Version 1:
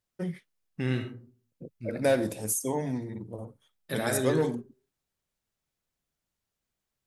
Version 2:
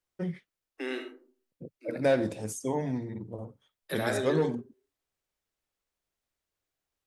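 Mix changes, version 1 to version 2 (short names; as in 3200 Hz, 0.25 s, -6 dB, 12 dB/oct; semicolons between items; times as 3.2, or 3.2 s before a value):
first voice: add air absorption 81 m; second voice: add steep high-pass 270 Hz 96 dB/oct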